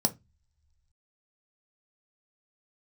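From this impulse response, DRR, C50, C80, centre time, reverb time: 6.5 dB, 20.0 dB, 29.0 dB, 4 ms, not exponential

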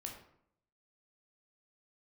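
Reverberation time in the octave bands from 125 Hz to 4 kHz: 0.80, 0.80, 0.70, 0.65, 0.55, 0.40 s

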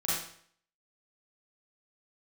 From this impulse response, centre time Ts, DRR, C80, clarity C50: 66 ms, -9.0 dB, 3.5 dB, -1.5 dB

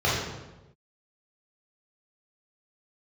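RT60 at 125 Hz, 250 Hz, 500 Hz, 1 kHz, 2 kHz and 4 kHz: 1.3, 1.1, 1.1, 1.0, 0.85, 0.75 s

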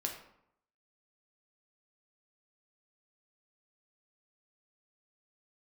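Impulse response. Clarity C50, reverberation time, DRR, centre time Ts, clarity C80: 7.0 dB, 0.75 s, 1.0 dB, 25 ms, 9.5 dB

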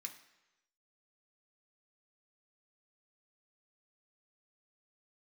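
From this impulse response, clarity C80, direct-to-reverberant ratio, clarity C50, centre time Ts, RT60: 13.5 dB, 2.0 dB, 10.5 dB, 13 ms, 1.0 s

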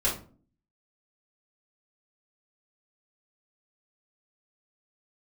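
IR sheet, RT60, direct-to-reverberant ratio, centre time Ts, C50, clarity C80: 0.40 s, -7.5 dB, 26 ms, 7.0 dB, 13.5 dB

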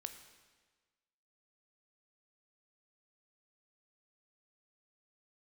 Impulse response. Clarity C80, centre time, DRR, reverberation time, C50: 11.0 dB, 18 ms, 7.5 dB, 1.4 s, 9.5 dB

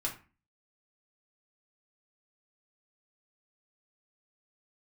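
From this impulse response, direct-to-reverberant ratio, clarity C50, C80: -2.5 dB, 10.0 dB, 16.0 dB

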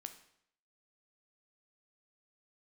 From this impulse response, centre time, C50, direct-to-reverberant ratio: 10 ms, 11.0 dB, 7.0 dB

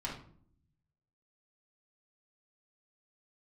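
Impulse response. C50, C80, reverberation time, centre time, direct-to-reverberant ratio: 5.0 dB, 10.5 dB, 0.55 s, 30 ms, -5.0 dB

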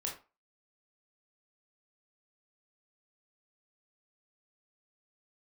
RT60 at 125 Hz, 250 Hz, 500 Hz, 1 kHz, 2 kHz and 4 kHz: 0.25, 0.30, 0.30, 0.35, 0.25, 0.25 s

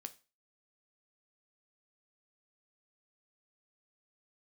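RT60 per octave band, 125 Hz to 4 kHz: 0.35, 0.35, 0.30, 0.30, 0.30, 0.30 s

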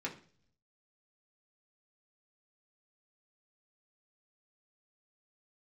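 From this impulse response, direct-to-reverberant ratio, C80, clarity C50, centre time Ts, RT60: -3.0 dB, 17.0 dB, 12.5 dB, 14 ms, 0.45 s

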